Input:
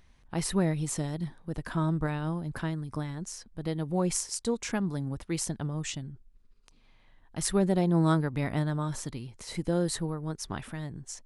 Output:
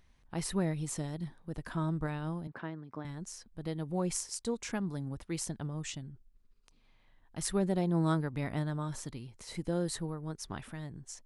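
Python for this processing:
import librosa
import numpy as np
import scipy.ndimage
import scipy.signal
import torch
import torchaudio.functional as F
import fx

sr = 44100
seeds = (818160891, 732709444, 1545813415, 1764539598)

y = fx.bandpass_edges(x, sr, low_hz=220.0, high_hz=2400.0, at=(2.47, 3.05))
y = F.gain(torch.from_numpy(y), -5.0).numpy()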